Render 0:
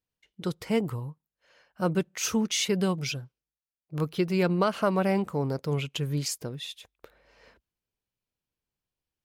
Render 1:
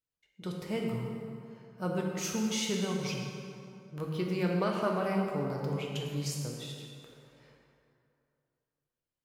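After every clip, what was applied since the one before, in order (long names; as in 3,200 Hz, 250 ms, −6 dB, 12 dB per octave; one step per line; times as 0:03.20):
dense smooth reverb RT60 2.6 s, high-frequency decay 0.6×, DRR −1 dB
level −8.5 dB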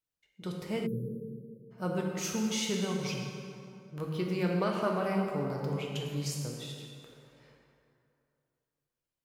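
time-frequency box erased 0:00.86–0:01.71, 590–9,800 Hz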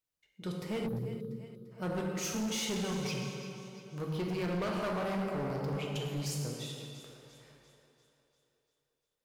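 echo with a time of its own for lows and highs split 350 Hz, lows 164 ms, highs 345 ms, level −14.5 dB
gain into a clipping stage and back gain 31 dB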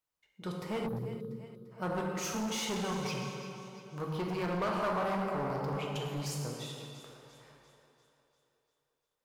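parametric band 1,000 Hz +8 dB 1.3 octaves
level −1.5 dB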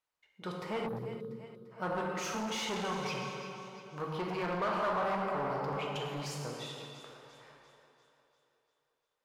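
mid-hump overdrive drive 9 dB, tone 2,700 Hz, clips at −24 dBFS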